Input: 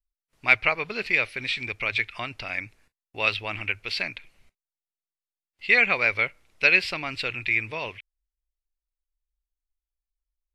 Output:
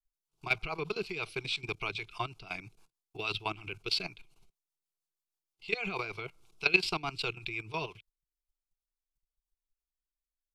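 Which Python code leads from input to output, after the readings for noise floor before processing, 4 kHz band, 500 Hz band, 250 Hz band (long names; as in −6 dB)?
below −85 dBFS, −4.5 dB, −6.0 dB, −3.5 dB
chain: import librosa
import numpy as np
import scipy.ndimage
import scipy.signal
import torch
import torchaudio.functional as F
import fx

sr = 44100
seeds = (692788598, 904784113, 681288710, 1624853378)

y = fx.level_steps(x, sr, step_db=16)
y = fx.rotary(y, sr, hz=6.3)
y = fx.fixed_phaser(y, sr, hz=370.0, stages=8)
y = F.gain(torch.from_numpy(y), 6.5).numpy()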